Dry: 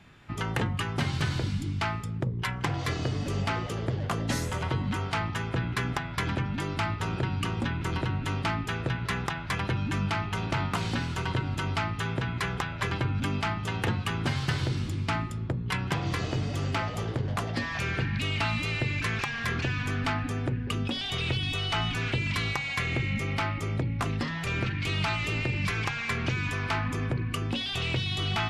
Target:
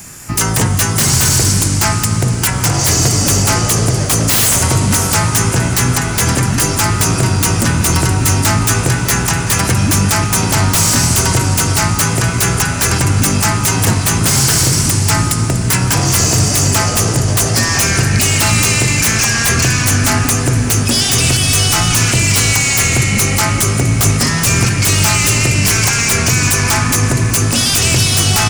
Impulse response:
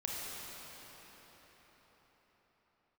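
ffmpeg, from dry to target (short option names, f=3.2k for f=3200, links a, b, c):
-filter_complex "[0:a]aecho=1:1:661:0.0794,aexciter=amount=10.3:drive=9.6:freq=5.6k,aeval=exprs='0.708*sin(PI/2*7.94*val(0)/0.708)':c=same,asplit=2[a][b];[1:a]atrim=start_sample=2205,asetrate=22050,aresample=44100[c];[b][c]afir=irnorm=-1:irlink=0,volume=-10.5dB[d];[a][d]amix=inputs=2:normalize=0,volume=-8dB"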